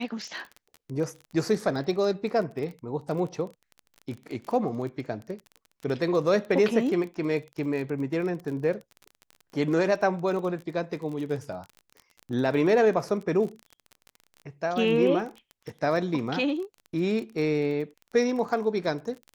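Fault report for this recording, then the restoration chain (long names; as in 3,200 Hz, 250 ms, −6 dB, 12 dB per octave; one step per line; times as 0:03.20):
surface crackle 27 per second −34 dBFS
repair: click removal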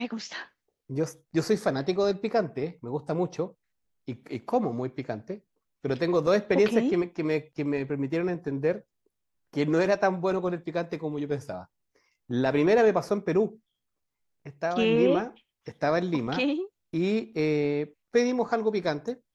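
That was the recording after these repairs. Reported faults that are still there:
none of them is left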